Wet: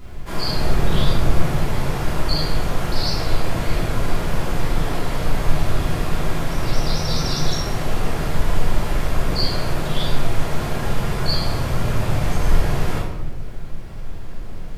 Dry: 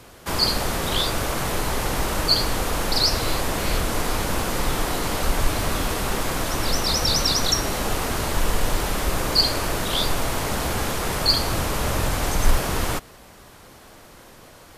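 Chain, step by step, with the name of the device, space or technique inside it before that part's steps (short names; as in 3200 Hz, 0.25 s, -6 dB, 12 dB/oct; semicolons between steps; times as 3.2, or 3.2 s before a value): car interior (bell 140 Hz +7 dB 0.61 oct; high shelf 4400 Hz -7 dB; brown noise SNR 10 dB); 0.57–1.45 low shelf 390 Hz +6 dB; shoebox room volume 420 m³, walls mixed, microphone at 3.1 m; gain -9.5 dB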